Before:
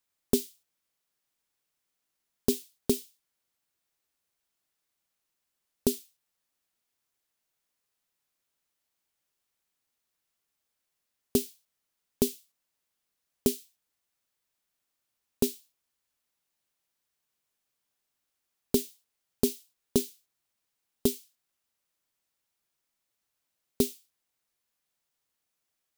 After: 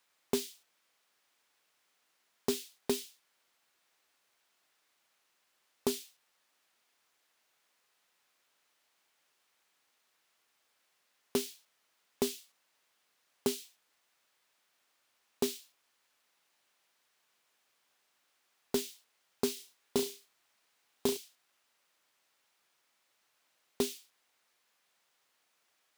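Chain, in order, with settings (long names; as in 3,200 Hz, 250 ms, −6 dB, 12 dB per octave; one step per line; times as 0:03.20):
downward compressor 6 to 1, threshold −27 dBFS, peak gain reduction 9 dB
mid-hump overdrive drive 25 dB, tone 2,900 Hz, clips at −10 dBFS
0:19.53–0:21.17: flutter between parallel walls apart 6 metres, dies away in 0.25 s
level −5 dB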